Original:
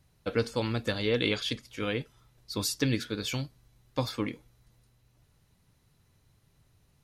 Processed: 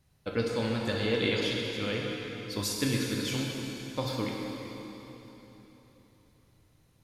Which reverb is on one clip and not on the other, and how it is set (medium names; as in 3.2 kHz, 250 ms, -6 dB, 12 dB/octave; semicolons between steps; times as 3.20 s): plate-style reverb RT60 3.8 s, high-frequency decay 0.9×, DRR -1.5 dB; trim -3 dB